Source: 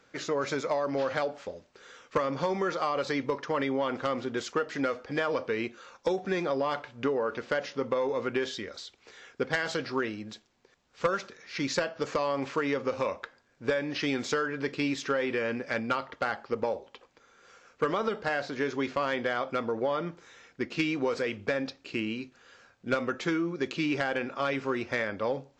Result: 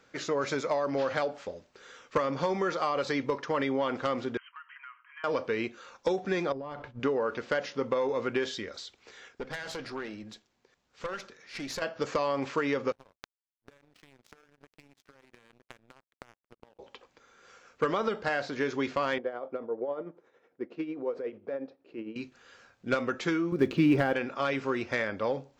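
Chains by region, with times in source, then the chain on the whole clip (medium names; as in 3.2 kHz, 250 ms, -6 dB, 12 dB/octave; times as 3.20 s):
4.37–5.24 s: expander -43 dBFS + brick-wall FIR band-pass 930–3200 Hz + compression 2:1, threshold -54 dBFS
6.52–7.00 s: expander -46 dBFS + tilt EQ -3 dB/octave + compression 8:1, threshold -35 dBFS
9.28–11.82 s: compression 2:1, threshold -31 dBFS + valve stage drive 28 dB, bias 0.65
12.92–16.79 s: compression 5:1, threshold -32 dBFS + hysteresis with a dead band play -36 dBFS + power-law waveshaper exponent 3
19.18–22.16 s: band-pass filter 460 Hz, Q 1.3 + tremolo 11 Hz, depth 56%
23.52–24.13 s: block-companded coder 5-bit + low-pass 2.5 kHz 6 dB/octave + bass shelf 470 Hz +10 dB
whole clip: none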